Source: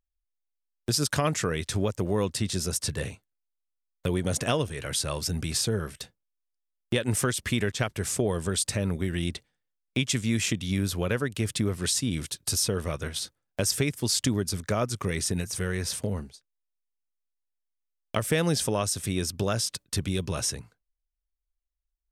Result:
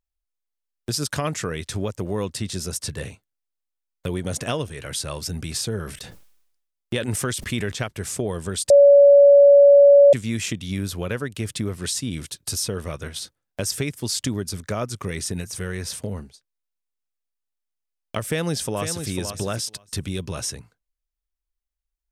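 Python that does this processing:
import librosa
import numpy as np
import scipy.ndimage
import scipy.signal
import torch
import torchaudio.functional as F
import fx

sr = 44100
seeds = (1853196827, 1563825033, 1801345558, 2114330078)

y = fx.sustainer(x, sr, db_per_s=64.0, at=(5.75, 7.83))
y = fx.echo_throw(y, sr, start_s=18.26, length_s=0.83, ms=500, feedback_pct=10, wet_db=-7.5)
y = fx.edit(y, sr, fx.bleep(start_s=8.7, length_s=1.43, hz=567.0, db=-7.5), tone=tone)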